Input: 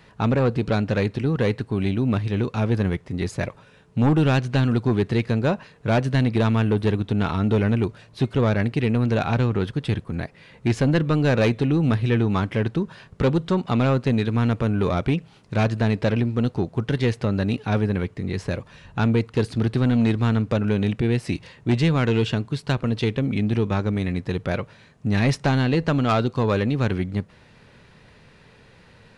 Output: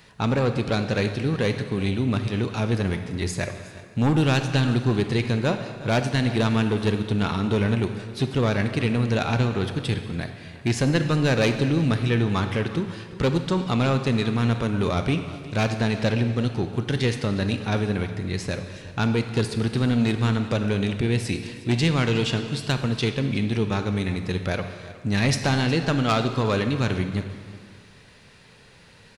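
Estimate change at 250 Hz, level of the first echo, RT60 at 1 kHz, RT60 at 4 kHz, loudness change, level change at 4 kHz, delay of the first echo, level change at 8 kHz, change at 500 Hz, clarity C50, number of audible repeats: −2.0 dB, −18.5 dB, 1.9 s, 1.5 s, −1.5 dB, +4.5 dB, 362 ms, can't be measured, −1.5 dB, 8.0 dB, 1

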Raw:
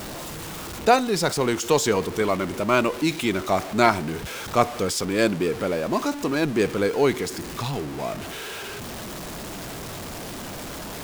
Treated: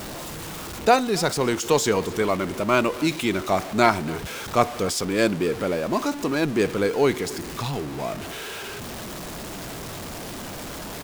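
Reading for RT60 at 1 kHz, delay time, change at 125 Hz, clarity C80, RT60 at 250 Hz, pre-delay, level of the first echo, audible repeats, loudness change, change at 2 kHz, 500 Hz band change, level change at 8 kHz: no reverb audible, 271 ms, 0.0 dB, no reverb audible, no reverb audible, no reverb audible, −20.5 dB, 1, 0.0 dB, 0.0 dB, 0.0 dB, 0.0 dB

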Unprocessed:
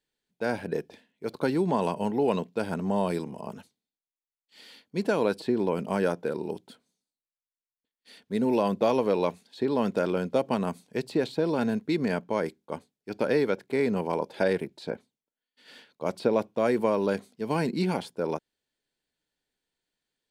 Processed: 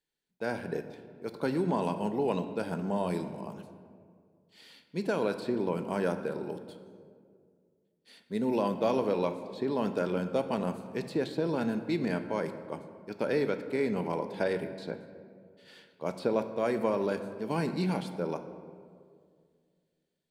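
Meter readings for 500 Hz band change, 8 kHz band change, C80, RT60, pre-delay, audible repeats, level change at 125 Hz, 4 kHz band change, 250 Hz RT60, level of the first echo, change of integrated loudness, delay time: −4.0 dB, can't be measured, 11.5 dB, 2.1 s, 5 ms, no echo audible, −2.5 dB, −4.0 dB, 2.5 s, no echo audible, −4.0 dB, no echo audible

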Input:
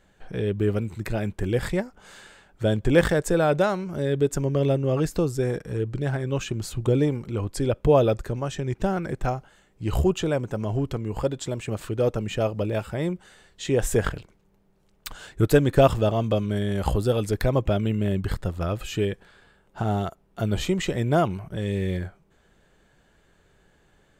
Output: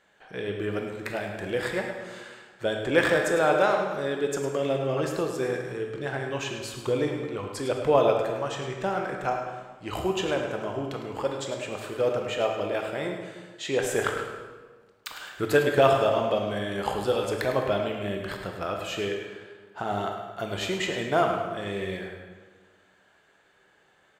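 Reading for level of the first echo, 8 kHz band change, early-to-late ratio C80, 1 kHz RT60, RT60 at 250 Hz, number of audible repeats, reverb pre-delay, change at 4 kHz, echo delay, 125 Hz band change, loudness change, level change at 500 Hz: −10.0 dB, −2.5 dB, 5.0 dB, 1.4 s, 1.7 s, 2, 16 ms, +1.5 dB, 105 ms, −11.5 dB, −2.5 dB, −1.0 dB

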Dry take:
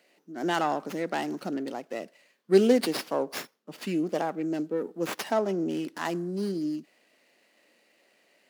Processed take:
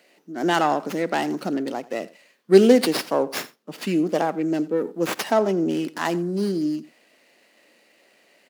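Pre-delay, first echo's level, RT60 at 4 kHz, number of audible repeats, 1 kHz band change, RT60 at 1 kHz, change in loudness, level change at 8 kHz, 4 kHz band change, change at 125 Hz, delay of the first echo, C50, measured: no reverb audible, −20.0 dB, no reverb audible, 1, +6.5 dB, no reverb audible, +6.5 dB, +6.5 dB, +6.5 dB, +6.5 dB, 87 ms, no reverb audible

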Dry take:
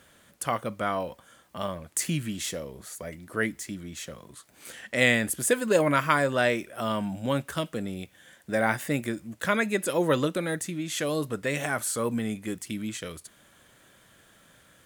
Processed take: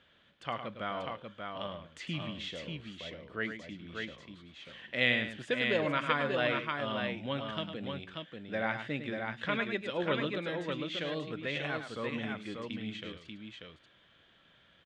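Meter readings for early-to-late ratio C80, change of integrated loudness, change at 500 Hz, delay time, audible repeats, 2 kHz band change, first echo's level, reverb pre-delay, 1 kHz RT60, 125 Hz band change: no reverb audible, −7.0 dB, −7.5 dB, 105 ms, 2, −5.0 dB, −9.0 dB, no reverb audible, no reverb audible, −8.0 dB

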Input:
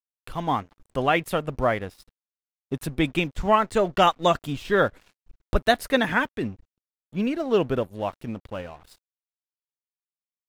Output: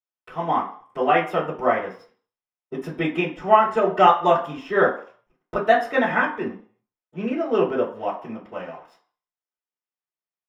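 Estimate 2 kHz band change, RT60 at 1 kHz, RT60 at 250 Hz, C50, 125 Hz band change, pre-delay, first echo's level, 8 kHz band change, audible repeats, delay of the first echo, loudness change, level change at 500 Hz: +2.0 dB, 0.50 s, 0.35 s, 8.0 dB, −4.0 dB, 3 ms, no echo audible, below −10 dB, no echo audible, no echo audible, +3.0 dB, +3.0 dB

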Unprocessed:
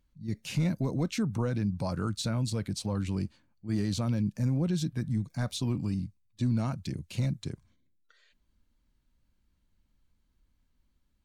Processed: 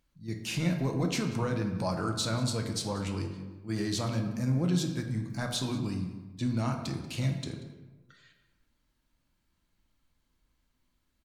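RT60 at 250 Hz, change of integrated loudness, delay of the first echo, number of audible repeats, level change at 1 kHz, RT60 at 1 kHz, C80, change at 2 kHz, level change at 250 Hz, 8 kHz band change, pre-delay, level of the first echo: 1.3 s, −0.5 dB, 186 ms, 1, +4.5 dB, 1.2 s, 8.5 dB, +4.5 dB, −0.5 dB, +4.0 dB, 3 ms, −19.0 dB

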